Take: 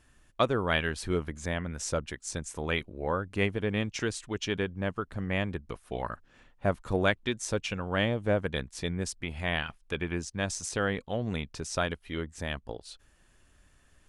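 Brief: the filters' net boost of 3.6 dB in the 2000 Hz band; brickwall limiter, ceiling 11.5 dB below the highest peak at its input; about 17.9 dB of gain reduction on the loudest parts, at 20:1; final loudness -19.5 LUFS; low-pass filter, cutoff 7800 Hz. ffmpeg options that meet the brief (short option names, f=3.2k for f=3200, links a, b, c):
-af "lowpass=7.8k,equalizer=f=2k:t=o:g=4.5,acompressor=threshold=-37dB:ratio=20,volume=26.5dB,alimiter=limit=-7.5dB:level=0:latency=1"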